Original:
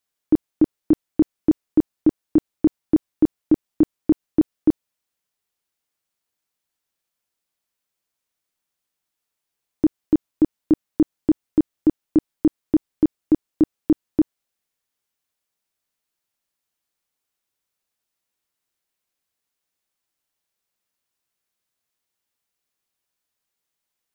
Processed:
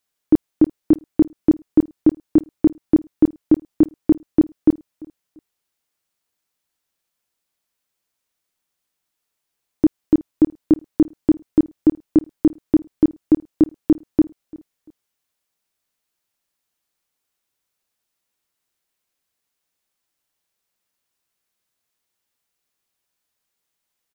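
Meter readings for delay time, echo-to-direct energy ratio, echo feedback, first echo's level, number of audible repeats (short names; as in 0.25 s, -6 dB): 0.343 s, -22.5 dB, 30%, -23.0 dB, 2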